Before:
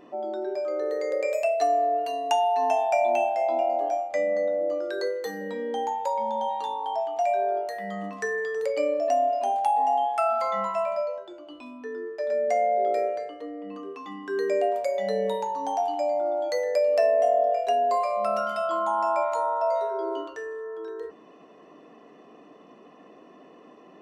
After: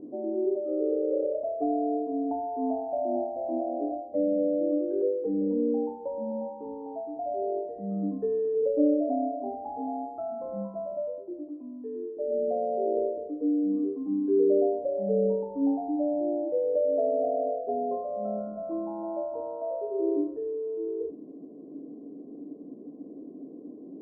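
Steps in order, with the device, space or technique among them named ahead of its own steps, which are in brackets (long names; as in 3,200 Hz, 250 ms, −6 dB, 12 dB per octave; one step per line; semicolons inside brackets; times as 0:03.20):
0:11.48–0:12.17: spectral tilt +4 dB per octave
under water (low-pass filter 470 Hz 24 dB per octave; parametric band 280 Hz +12 dB 0.32 octaves)
level +4.5 dB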